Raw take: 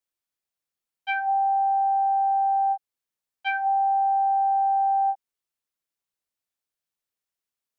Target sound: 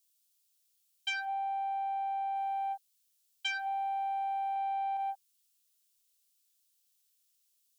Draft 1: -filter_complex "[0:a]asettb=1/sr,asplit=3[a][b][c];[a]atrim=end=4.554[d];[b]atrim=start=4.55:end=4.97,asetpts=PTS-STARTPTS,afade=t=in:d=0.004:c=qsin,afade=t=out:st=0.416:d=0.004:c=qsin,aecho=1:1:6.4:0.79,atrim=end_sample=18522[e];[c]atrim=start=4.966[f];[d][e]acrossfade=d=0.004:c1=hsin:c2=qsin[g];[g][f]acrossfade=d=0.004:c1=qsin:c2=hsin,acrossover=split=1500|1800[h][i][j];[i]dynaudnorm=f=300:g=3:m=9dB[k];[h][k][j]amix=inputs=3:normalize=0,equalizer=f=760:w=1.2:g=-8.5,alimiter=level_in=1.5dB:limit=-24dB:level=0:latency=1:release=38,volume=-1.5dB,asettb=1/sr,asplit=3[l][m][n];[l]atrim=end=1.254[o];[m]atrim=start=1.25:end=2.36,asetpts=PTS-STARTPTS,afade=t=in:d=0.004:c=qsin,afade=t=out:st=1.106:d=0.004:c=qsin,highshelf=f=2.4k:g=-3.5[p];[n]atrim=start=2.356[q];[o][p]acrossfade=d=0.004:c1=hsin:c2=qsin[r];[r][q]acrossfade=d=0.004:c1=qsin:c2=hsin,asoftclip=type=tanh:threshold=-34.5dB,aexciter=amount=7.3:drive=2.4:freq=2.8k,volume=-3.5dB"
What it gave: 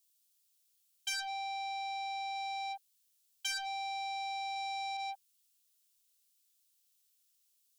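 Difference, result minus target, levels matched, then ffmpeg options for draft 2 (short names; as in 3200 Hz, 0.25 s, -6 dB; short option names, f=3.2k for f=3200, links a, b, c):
soft clip: distortion +16 dB
-filter_complex "[0:a]asettb=1/sr,asplit=3[a][b][c];[a]atrim=end=4.554[d];[b]atrim=start=4.55:end=4.97,asetpts=PTS-STARTPTS,afade=t=in:d=0.004:c=qsin,afade=t=out:st=0.416:d=0.004:c=qsin,aecho=1:1:6.4:0.79,atrim=end_sample=18522[e];[c]atrim=start=4.966[f];[d][e]acrossfade=d=0.004:c1=hsin:c2=qsin[g];[g][f]acrossfade=d=0.004:c1=qsin:c2=hsin,acrossover=split=1500|1800[h][i][j];[i]dynaudnorm=f=300:g=3:m=9dB[k];[h][k][j]amix=inputs=3:normalize=0,equalizer=f=760:w=1.2:g=-8.5,alimiter=level_in=1.5dB:limit=-24dB:level=0:latency=1:release=38,volume=-1.5dB,asettb=1/sr,asplit=3[l][m][n];[l]atrim=end=1.254[o];[m]atrim=start=1.25:end=2.36,asetpts=PTS-STARTPTS,afade=t=in:d=0.004:c=qsin,afade=t=out:st=1.106:d=0.004:c=qsin,highshelf=f=2.4k:g=-3.5[p];[n]atrim=start=2.356[q];[o][p]acrossfade=d=0.004:c1=hsin:c2=qsin[r];[r][q]acrossfade=d=0.004:c1=qsin:c2=hsin,asoftclip=type=tanh:threshold=-23dB,aexciter=amount=7.3:drive=2.4:freq=2.8k,volume=-3.5dB"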